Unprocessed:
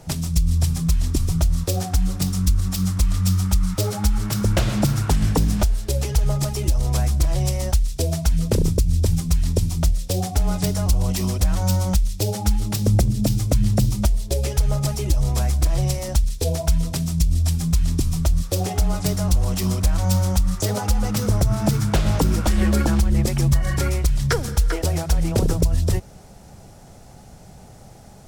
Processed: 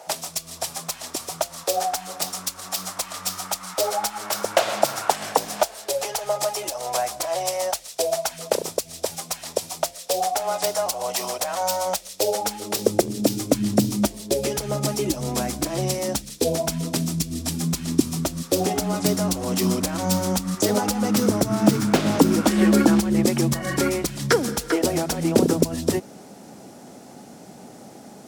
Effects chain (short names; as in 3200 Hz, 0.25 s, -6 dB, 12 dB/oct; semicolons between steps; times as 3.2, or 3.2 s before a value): 21.55–22.1 self-modulated delay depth 0.12 ms; high-pass sweep 660 Hz -> 260 Hz, 11.78–13.84; gain +2.5 dB